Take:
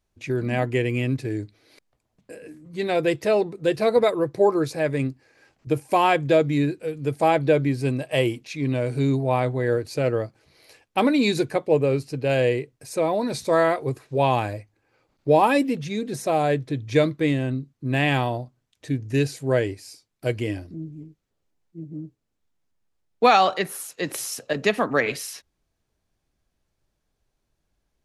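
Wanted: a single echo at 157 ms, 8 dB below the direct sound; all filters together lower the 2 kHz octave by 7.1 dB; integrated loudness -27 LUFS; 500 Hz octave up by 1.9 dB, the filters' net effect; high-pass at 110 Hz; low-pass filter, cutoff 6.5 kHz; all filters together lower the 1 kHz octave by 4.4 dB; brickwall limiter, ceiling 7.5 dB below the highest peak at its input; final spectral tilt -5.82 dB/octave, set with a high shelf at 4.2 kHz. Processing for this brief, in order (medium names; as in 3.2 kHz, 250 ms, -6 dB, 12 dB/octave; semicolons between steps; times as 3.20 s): high-pass 110 Hz; low-pass 6.5 kHz; peaking EQ 500 Hz +4.5 dB; peaking EQ 1 kHz -7.5 dB; peaking EQ 2 kHz -5.5 dB; treble shelf 4.2 kHz -6.5 dB; peak limiter -13 dBFS; delay 157 ms -8 dB; trim -3 dB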